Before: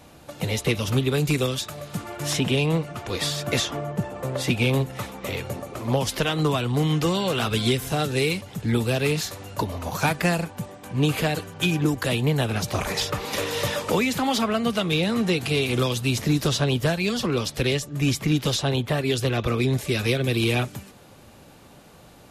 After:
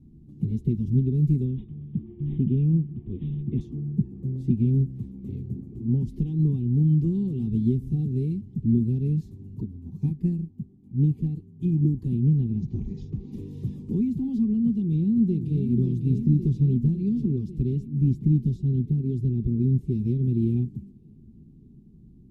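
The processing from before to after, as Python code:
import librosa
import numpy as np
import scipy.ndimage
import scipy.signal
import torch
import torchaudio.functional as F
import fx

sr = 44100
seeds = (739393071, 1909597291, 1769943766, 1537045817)

y = fx.resample_bad(x, sr, factor=6, down='none', up='filtered', at=(1.45, 3.61))
y = fx.upward_expand(y, sr, threshold_db=-33.0, expansion=1.5, at=(9.6, 11.65))
y = fx.ellip_lowpass(y, sr, hz=6800.0, order=4, stop_db=40, at=(12.33, 13.32))
y = fx.echo_throw(y, sr, start_s=14.73, length_s=0.94, ms=550, feedback_pct=70, wet_db=-7.0)
y = fx.peak_eq(y, sr, hz=1300.0, db=-9.5, octaves=1.5, at=(18.38, 19.81))
y = scipy.signal.sosfilt(scipy.signal.cheby2(4, 40, 550.0, 'lowpass', fs=sr, output='sos'), y)
y = fx.peak_eq(y, sr, hz=180.0, db=-6.5, octaves=0.27)
y = y + 0.43 * np.pad(y, (int(5.2 * sr / 1000.0), 0))[:len(y)]
y = y * 10.0 ** (4.0 / 20.0)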